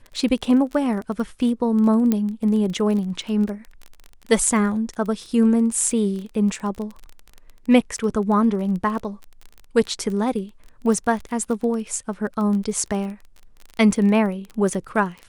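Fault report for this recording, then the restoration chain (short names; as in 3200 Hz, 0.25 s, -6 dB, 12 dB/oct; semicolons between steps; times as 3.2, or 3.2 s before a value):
crackle 22/s -28 dBFS
2.12 pop -8 dBFS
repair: de-click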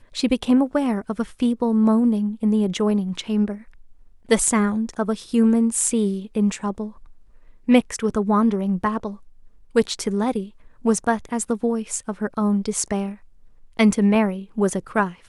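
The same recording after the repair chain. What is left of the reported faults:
none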